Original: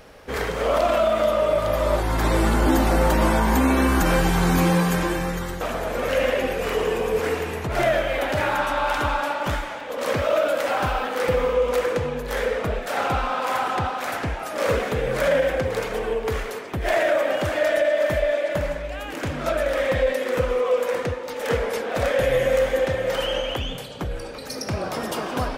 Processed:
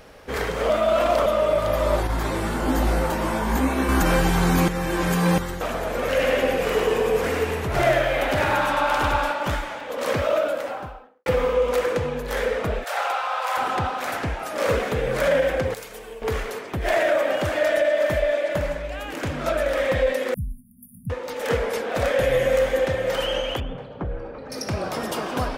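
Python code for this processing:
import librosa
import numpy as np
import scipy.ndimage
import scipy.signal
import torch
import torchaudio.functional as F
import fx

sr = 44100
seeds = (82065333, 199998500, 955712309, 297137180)

y = fx.detune_double(x, sr, cents=44, at=(2.07, 3.89))
y = fx.echo_single(y, sr, ms=99, db=-3.5, at=(6.09, 9.32))
y = fx.studio_fade_out(y, sr, start_s=10.16, length_s=1.1)
y = fx.highpass(y, sr, hz=580.0, slope=24, at=(12.84, 13.57))
y = fx.pre_emphasis(y, sr, coefficient=0.8, at=(15.74, 16.22))
y = fx.brickwall_bandstop(y, sr, low_hz=240.0, high_hz=9300.0, at=(20.34, 21.1))
y = fx.lowpass(y, sr, hz=1400.0, slope=12, at=(23.6, 24.52))
y = fx.edit(y, sr, fx.reverse_span(start_s=0.7, length_s=0.56),
    fx.reverse_span(start_s=4.68, length_s=0.7), tone=tone)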